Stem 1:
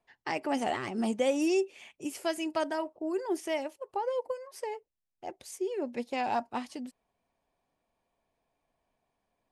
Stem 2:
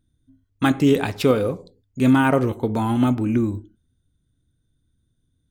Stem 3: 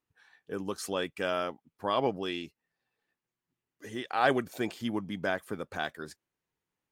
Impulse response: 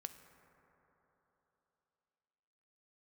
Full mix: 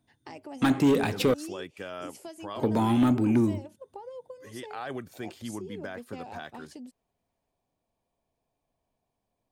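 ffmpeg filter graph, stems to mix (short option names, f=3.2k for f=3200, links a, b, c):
-filter_complex "[0:a]acompressor=threshold=-41dB:ratio=3,equalizer=f=1.7k:w=0.89:g=-7.5,volume=-0.5dB[a];[1:a]highpass=170,asoftclip=type=tanh:threshold=-15.5dB,volume=-0.5dB,asplit=3[b][c][d];[b]atrim=end=1.34,asetpts=PTS-STARTPTS,afade=t=out:st=1.336:d=0.004:c=hsin[e];[c]atrim=start=1.34:end=2.56,asetpts=PTS-STARTPTS,volume=0[f];[d]atrim=start=2.56,asetpts=PTS-STARTPTS,afade=t=in:d=0.004:c=hsin[g];[e][f][g]concat=n=3:v=0:a=1[h];[2:a]adelay=600,volume=-5dB[i];[a][i]amix=inputs=2:normalize=0,alimiter=level_in=2.5dB:limit=-24dB:level=0:latency=1:release=37,volume=-2.5dB,volume=0dB[j];[h][j]amix=inputs=2:normalize=0,acrossover=split=360[k][l];[l]acompressor=threshold=-27dB:ratio=1.5[m];[k][m]amix=inputs=2:normalize=0,equalizer=f=100:t=o:w=1.1:g=5.5"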